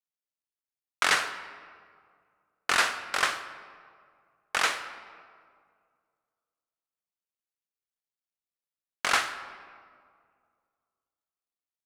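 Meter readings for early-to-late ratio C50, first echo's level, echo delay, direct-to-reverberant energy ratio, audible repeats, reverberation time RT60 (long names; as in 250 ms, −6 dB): 11.0 dB, no echo audible, no echo audible, 10.0 dB, no echo audible, 2.1 s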